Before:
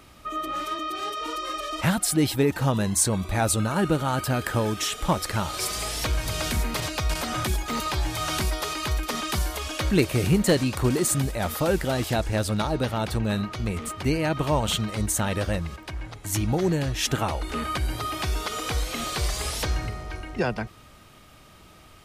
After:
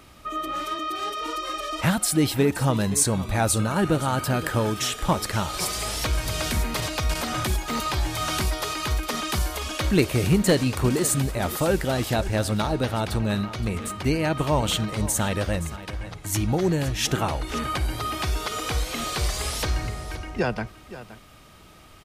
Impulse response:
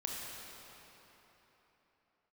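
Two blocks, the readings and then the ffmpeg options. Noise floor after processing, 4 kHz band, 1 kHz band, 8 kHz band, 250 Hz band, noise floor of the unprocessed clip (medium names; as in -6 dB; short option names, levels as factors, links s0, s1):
-48 dBFS, +1.0 dB, +1.0 dB, +1.0 dB, +1.0 dB, -50 dBFS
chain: -filter_complex "[0:a]aecho=1:1:521:0.178,asplit=2[s0][s1];[1:a]atrim=start_sample=2205,atrim=end_sample=3969[s2];[s1][s2]afir=irnorm=-1:irlink=0,volume=0.141[s3];[s0][s3]amix=inputs=2:normalize=0"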